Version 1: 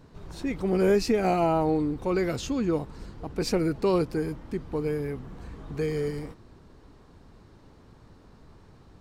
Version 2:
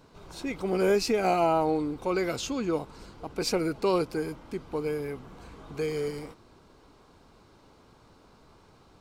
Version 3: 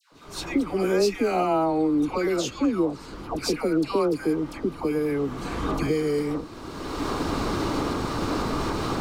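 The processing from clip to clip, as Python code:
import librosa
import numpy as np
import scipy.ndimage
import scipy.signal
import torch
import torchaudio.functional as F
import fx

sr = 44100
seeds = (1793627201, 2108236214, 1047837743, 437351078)

y1 = fx.low_shelf(x, sr, hz=300.0, db=-11.5)
y1 = fx.notch(y1, sr, hz=1800.0, q=6.8)
y1 = F.gain(torch.from_numpy(y1), 2.5).numpy()
y2 = fx.recorder_agc(y1, sr, target_db=-19.0, rise_db_per_s=25.0, max_gain_db=30)
y2 = fx.small_body(y2, sr, hz=(300.0, 1200.0, 1800.0), ring_ms=30, db=7)
y2 = fx.dispersion(y2, sr, late='lows', ms=125.0, hz=1100.0)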